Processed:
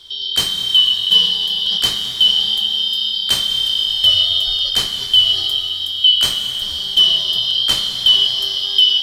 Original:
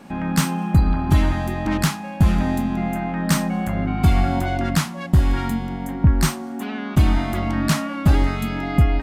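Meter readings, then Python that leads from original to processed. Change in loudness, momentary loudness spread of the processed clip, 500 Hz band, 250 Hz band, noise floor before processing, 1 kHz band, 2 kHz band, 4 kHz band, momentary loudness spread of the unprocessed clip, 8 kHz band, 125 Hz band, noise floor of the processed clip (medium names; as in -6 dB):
+7.5 dB, 6 LU, -10.0 dB, under -20 dB, -32 dBFS, -11.5 dB, -5.5 dB, +26.0 dB, 6 LU, +3.5 dB, -21.5 dB, -24 dBFS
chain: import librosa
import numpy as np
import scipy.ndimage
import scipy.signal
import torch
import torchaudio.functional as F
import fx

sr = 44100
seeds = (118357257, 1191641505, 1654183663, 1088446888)

y = fx.band_shuffle(x, sr, order='3412')
y = fx.low_shelf(y, sr, hz=150.0, db=11.0)
y = fx.rev_plate(y, sr, seeds[0], rt60_s=4.2, hf_ratio=0.9, predelay_ms=0, drr_db=4.5)
y = y * librosa.db_to_amplitude(1.5)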